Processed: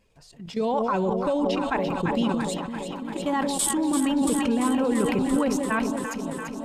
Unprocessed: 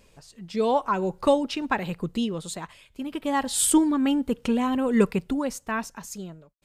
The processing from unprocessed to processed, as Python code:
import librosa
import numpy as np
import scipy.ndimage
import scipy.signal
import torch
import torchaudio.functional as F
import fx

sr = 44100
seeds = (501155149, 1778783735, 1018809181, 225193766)

y = fx.spec_quant(x, sr, step_db=15)
y = fx.high_shelf(y, sr, hz=4400.0, db=-5.5)
y = fx.level_steps(y, sr, step_db=14)
y = fx.echo_alternate(y, sr, ms=170, hz=830.0, feedback_pct=88, wet_db=-7.0)
y = fx.sustainer(y, sr, db_per_s=24.0)
y = y * 10.0 ** (4.0 / 20.0)